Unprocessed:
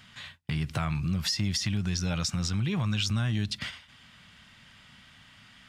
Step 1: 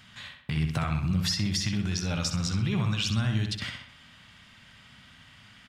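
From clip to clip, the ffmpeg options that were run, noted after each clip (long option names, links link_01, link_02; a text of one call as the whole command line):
ffmpeg -i in.wav -filter_complex "[0:a]asplit=2[link_01][link_02];[link_02]adelay=64,lowpass=frequency=4000:poles=1,volume=-5dB,asplit=2[link_03][link_04];[link_04]adelay=64,lowpass=frequency=4000:poles=1,volume=0.52,asplit=2[link_05][link_06];[link_06]adelay=64,lowpass=frequency=4000:poles=1,volume=0.52,asplit=2[link_07][link_08];[link_08]adelay=64,lowpass=frequency=4000:poles=1,volume=0.52,asplit=2[link_09][link_10];[link_10]adelay=64,lowpass=frequency=4000:poles=1,volume=0.52,asplit=2[link_11][link_12];[link_12]adelay=64,lowpass=frequency=4000:poles=1,volume=0.52,asplit=2[link_13][link_14];[link_14]adelay=64,lowpass=frequency=4000:poles=1,volume=0.52[link_15];[link_01][link_03][link_05][link_07][link_09][link_11][link_13][link_15]amix=inputs=8:normalize=0" out.wav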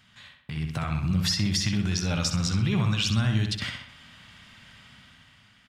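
ffmpeg -i in.wav -af "dynaudnorm=framelen=250:gausssize=7:maxgain=9dB,volume=-6dB" out.wav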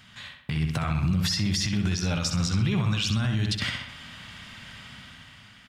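ffmpeg -i in.wav -af "alimiter=limit=-23.5dB:level=0:latency=1:release=193,volume=7dB" out.wav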